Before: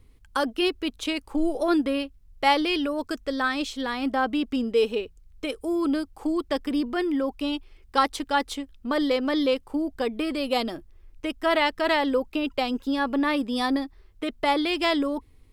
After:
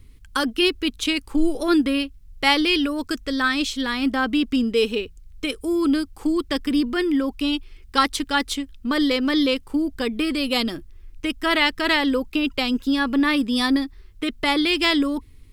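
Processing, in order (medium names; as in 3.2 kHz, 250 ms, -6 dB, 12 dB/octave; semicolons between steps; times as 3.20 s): peaking EQ 680 Hz -12 dB 1.4 oct; trim +8 dB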